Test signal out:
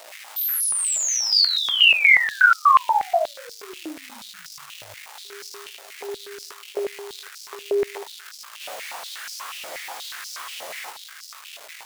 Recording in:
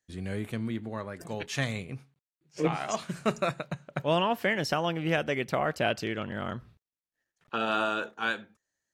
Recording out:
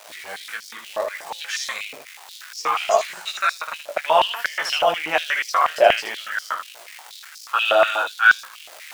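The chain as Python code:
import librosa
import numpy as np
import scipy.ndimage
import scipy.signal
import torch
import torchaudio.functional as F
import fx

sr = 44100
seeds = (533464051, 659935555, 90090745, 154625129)

y = fx.chorus_voices(x, sr, voices=4, hz=0.24, base_ms=12, depth_ms=1.4, mix_pct=30)
y = fx.dmg_crackle(y, sr, seeds[0], per_s=440.0, level_db=-37.0)
y = fx.room_early_taps(y, sr, ms=(19, 77), db=(-3.5, -5.0))
y = fx.filter_held_highpass(y, sr, hz=8.3, low_hz=610.0, high_hz=5100.0)
y = y * librosa.db_to_amplitude(7.0)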